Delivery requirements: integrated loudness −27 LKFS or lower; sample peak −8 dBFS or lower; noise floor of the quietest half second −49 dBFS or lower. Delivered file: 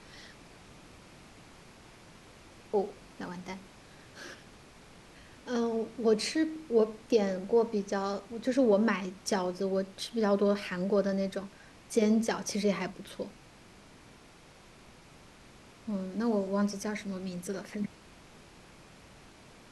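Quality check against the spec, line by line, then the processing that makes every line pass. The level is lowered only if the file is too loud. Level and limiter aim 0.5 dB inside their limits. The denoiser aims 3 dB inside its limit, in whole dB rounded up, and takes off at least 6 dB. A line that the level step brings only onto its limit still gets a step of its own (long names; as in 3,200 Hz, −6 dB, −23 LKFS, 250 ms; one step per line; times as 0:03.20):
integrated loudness −31.0 LKFS: in spec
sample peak −14.5 dBFS: in spec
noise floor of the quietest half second −55 dBFS: in spec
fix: no processing needed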